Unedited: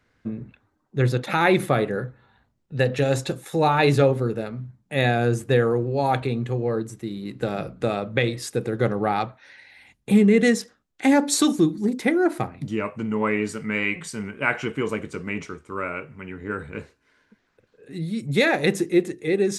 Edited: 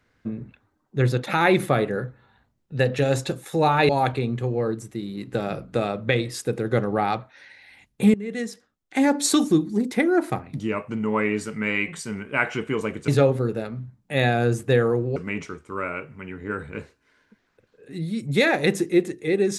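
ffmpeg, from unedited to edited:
-filter_complex "[0:a]asplit=5[a][b][c][d][e];[a]atrim=end=3.892[f];[b]atrim=start=5.968:end=10.22,asetpts=PTS-STARTPTS,afade=t=out:st=4.248:d=0.004:c=hsin:silence=0.0891251[g];[c]atrim=start=10.22:end=15.162,asetpts=PTS-STARTPTS,afade=t=in:d=1.17:silence=0.0891251[h];[d]atrim=start=3.888:end=5.972[i];[e]atrim=start=15.158[j];[g][h]concat=n=2:v=0:a=1[k];[f][k]acrossfade=d=0.004:c1=hsin:c2=hsin[l];[l][i]acrossfade=d=0.004:c1=hsin:c2=hsin[m];[m][j]acrossfade=d=0.004:c1=hsin:c2=hsin"

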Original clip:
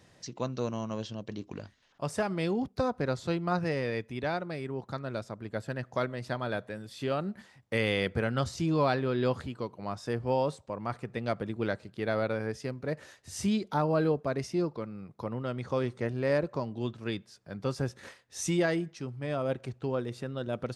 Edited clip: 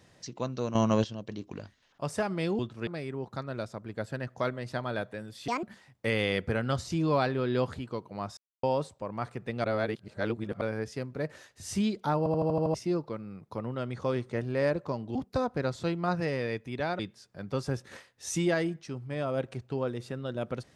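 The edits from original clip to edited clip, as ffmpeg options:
-filter_complex "[0:a]asplit=20[a][b][c][d][e][f][g][h][i][j][k][l][m][n][o][p][q][r][s][t];[a]atrim=end=0.752[u];[b]atrim=start=0.748:end=1.042,asetpts=PTS-STARTPTS,volume=10.5dB[v];[c]atrim=start=1.038:end=2.592[w];[d]atrim=start=16.828:end=17.112[x];[e]atrim=start=4.428:end=7.044[y];[f]atrim=start=7.04:end=7.31,asetpts=PTS-STARTPTS,asetrate=78057,aresample=44100,atrim=end_sample=6727,asetpts=PTS-STARTPTS[z];[g]atrim=start=7.306:end=10.05,asetpts=PTS-STARTPTS,afade=t=out:st=2.74:d=0.004:c=hsin[aa];[h]atrim=start=10.05:end=10.31,asetpts=PTS-STARTPTS,volume=0[ab];[i]atrim=start=10.31:end=11.322,asetpts=PTS-STARTPTS,afade=t=in:d=0.004:c=hsin[ac];[j]atrim=start=11.318:end=12.292,asetpts=PTS-STARTPTS,areverse[ad];[k]atrim=start=12.288:end=13.942[ae];[l]atrim=start=13.858:end=13.942[af];[m]atrim=start=13.858:end=13.942[ag];[n]atrim=start=13.858:end=13.942[ah];[o]atrim=start=13.858:end=13.942[ai];[p]atrim=start=13.858:end=13.942[aj];[q]atrim=start=13.858:end=13.942[ak];[r]atrim=start=14.418:end=16.832[al];[s]atrim=start=2.588:end=4.432[am];[t]atrim=start=17.108[an];[u][v]acrossfade=d=0.004:c1=hsin:c2=hsin[ao];[ao][w]acrossfade=d=0.004:c1=hsin:c2=hsin[ap];[ap][x]acrossfade=d=0.004:c1=hsin:c2=hsin[aq];[aq][y]acrossfade=d=0.004:c1=hsin:c2=hsin[ar];[ar][z]acrossfade=d=0.004:c1=hsin:c2=hsin[as];[aa][ab][ac]concat=n=3:v=0:a=1[at];[as][at]acrossfade=d=0.004:c1=hsin:c2=hsin[au];[au][ad]acrossfade=d=0.004:c1=hsin:c2=hsin[av];[av][ae]acrossfade=d=0.004:c1=hsin:c2=hsin[aw];[aw][af]acrossfade=d=0.004:c1=hsin:c2=hsin[ax];[ax][ag]acrossfade=d=0.004:c1=hsin:c2=hsin[ay];[ay][ah]acrossfade=d=0.004:c1=hsin:c2=hsin[az];[az][ai]acrossfade=d=0.004:c1=hsin:c2=hsin[ba];[ba][aj]acrossfade=d=0.004:c1=hsin:c2=hsin[bb];[bb][ak]acrossfade=d=0.004:c1=hsin:c2=hsin[bc];[bc][al]acrossfade=d=0.004:c1=hsin:c2=hsin[bd];[bd][am]acrossfade=d=0.004:c1=hsin:c2=hsin[be];[be][an]acrossfade=d=0.004:c1=hsin:c2=hsin"

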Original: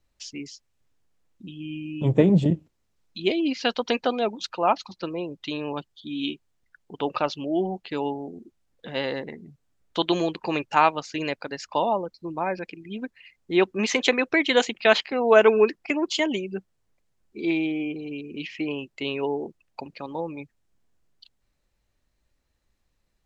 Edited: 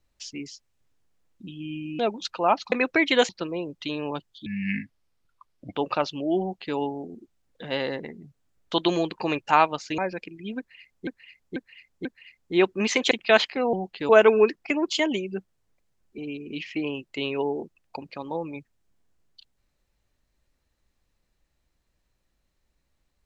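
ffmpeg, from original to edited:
-filter_complex "[0:a]asplit=14[a][b][c][d][e][f][g][h][i][j][k][l][m][n];[a]atrim=end=1.992[o];[b]atrim=start=4.178:end=4.912[p];[c]atrim=start=14.098:end=14.672[q];[d]atrim=start=4.908:end=6.084[r];[e]atrim=start=6.08:end=6.97,asetpts=PTS-STARTPTS,asetrate=30870,aresample=44100[s];[f]atrim=start=6.966:end=11.222[t];[g]atrim=start=12.438:end=13.532[u];[h]atrim=start=13.038:end=13.532[v];[i]atrim=start=13.038:end=13.532[w];[j]atrim=start=13.038:end=14.102[x];[k]atrim=start=14.668:end=15.292[y];[l]atrim=start=7.638:end=8.002[z];[m]atrim=start=15.288:end=17.382[aa];[n]atrim=start=18.018[ab];[o][p]acrossfade=d=0.004:c1=hsin:c2=hsin[ac];[ac][q]acrossfade=d=0.004:c1=hsin:c2=hsin[ad];[ad][r]acrossfade=d=0.004:c1=hsin:c2=hsin[ae];[ae][s]acrossfade=d=0.004:c1=hsin:c2=hsin[af];[af][t]acrossfade=d=0.004:c1=hsin:c2=hsin[ag];[ag][u]acrossfade=d=0.004:c1=hsin:c2=hsin[ah];[ah][v]acrossfade=d=0.004:c1=hsin:c2=hsin[ai];[ai][w]acrossfade=d=0.004:c1=hsin:c2=hsin[aj];[aj][x]acrossfade=d=0.004:c1=hsin:c2=hsin[ak];[ak][y]acrossfade=d=0.004:c1=hsin:c2=hsin[al];[al][z]acrossfade=d=0.004:c1=hsin:c2=hsin[am];[am][aa]acrossfade=d=0.004:c1=hsin:c2=hsin[an];[an][ab]acrossfade=d=0.004:c1=hsin:c2=hsin"

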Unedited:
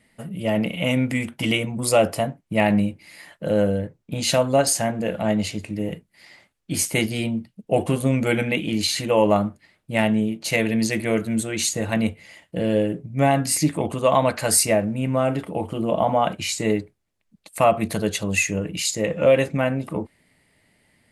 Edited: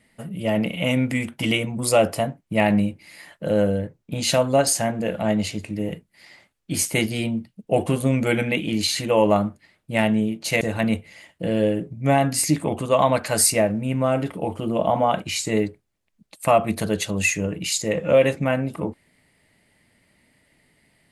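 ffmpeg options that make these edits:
-filter_complex "[0:a]asplit=2[a][b];[a]atrim=end=10.612[c];[b]atrim=start=11.738[d];[c][d]acrossfade=d=0.004:c1=hsin:c2=hsin"

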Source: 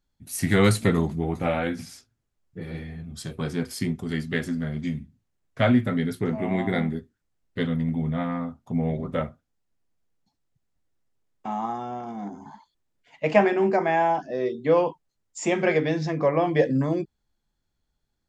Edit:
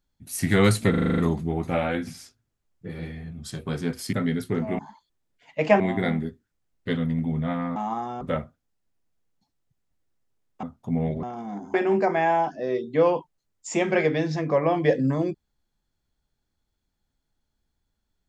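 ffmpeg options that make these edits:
-filter_complex "[0:a]asplit=16[a][b][c][d][e][f][g][h][i][j][k][l][m][n][o][p];[a]atrim=end=0.942[q];[b]atrim=start=0.898:end=0.942[r];[c]atrim=start=0.898:end=0.942[s];[d]atrim=start=0.898:end=0.942[t];[e]atrim=start=0.898:end=0.942[u];[f]atrim=start=0.898:end=0.942[v];[g]atrim=start=0.898:end=0.942[w];[h]atrim=start=0.898:end=3.852[x];[i]atrim=start=5.838:end=6.502[y];[j]atrim=start=12.438:end=13.452[z];[k]atrim=start=6.498:end=8.462[aa];[l]atrim=start=11.478:end=11.932[ab];[m]atrim=start=9.058:end=11.482[ac];[n]atrim=start=8.458:end=9.062[ad];[o]atrim=start=11.928:end=12.442[ae];[p]atrim=start=13.448[af];[q][r]acrossfade=d=0.004:c1=hsin:c2=hsin[ag];[ag][s]acrossfade=d=0.004:c1=hsin:c2=hsin[ah];[ah][t]acrossfade=d=0.004:c1=hsin:c2=hsin[ai];[ai][u]acrossfade=d=0.004:c1=hsin:c2=hsin[aj];[aj][v]acrossfade=d=0.004:c1=hsin:c2=hsin[ak];[ak][w]acrossfade=d=0.004:c1=hsin:c2=hsin[al];[al][x]acrossfade=d=0.004:c1=hsin:c2=hsin[am];[am][y]acrossfade=d=0.004:c1=hsin:c2=hsin[an];[an][z]acrossfade=d=0.004:c1=hsin:c2=hsin[ao];[ao][aa]acrossfade=d=0.004:c1=hsin:c2=hsin[ap];[ap][ab]acrossfade=d=0.004:c1=hsin:c2=hsin[aq];[aq][ac]acrossfade=d=0.004:c1=hsin:c2=hsin[ar];[ar][ad]acrossfade=d=0.004:c1=hsin:c2=hsin[as];[as][ae]acrossfade=d=0.004:c1=hsin:c2=hsin[at];[at][af]acrossfade=d=0.004:c1=hsin:c2=hsin"

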